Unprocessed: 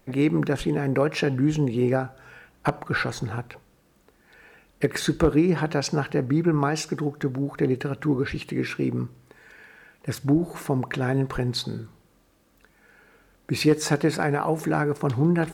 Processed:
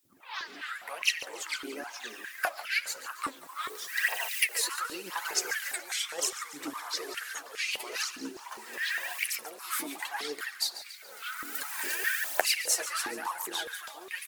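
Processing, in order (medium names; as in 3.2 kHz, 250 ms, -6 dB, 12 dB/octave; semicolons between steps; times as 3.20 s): tape start-up on the opening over 1.06 s; recorder AGC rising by 25 dB/s; differentiator; doubling 12 ms -6.5 dB; phaser 0.89 Hz, delay 3.9 ms, feedback 70%; added noise blue -70 dBFS; on a send: feedback delay 153 ms, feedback 49%, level -13.5 dB; on the sum: ever faster or slower copies 181 ms, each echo -4 st, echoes 3, each echo -6 dB; speed mistake 44.1 kHz file played as 48 kHz; step-sequenced high-pass 4.9 Hz 290–2200 Hz; trim -1 dB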